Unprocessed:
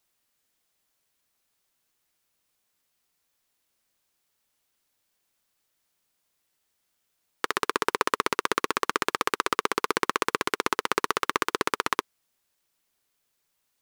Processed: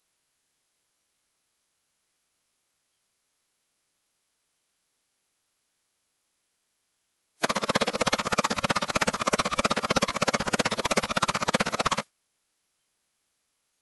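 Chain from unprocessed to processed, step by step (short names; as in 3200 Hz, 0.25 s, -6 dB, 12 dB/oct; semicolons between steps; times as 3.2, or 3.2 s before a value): sine folder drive 15 dB, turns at -2 dBFS; formant-preserving pitch shift -11.5 st; spectral noise reduction 10 dB; gain -7 dB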